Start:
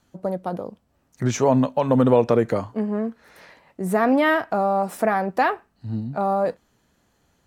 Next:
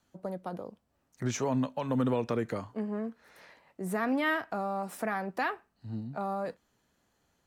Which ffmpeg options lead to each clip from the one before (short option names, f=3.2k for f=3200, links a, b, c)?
-filter_complex "[0:a]acrossover=split=390|1000[a][b][c];[b]acompressor=threshold=-32dB:ratio=6[d];[a][d][c]amix=inputs=3:normalize=0,lowshelf=f=270:g=-4,volume=-7dB"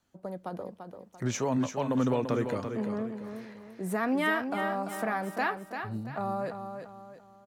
-filter_complex "[0:a]dynaudnorm=f=150:g=5:m=3.5dB,asplit=2[a][b];[b]aecho=0:1:341|682|1023|1364:0.422|0.164|0.0641|0.025[c];[a][c]amix=inputs=2:normalize=0,volume=-2.5dB"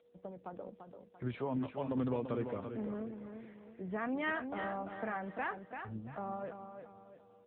-af "aeval=exprs='val(0)+0.00178*sin(2*PI*480*n/s)':c=same,volume=-7dB" -ar 8000 -c:a libopencore_amrnb -b:a 7950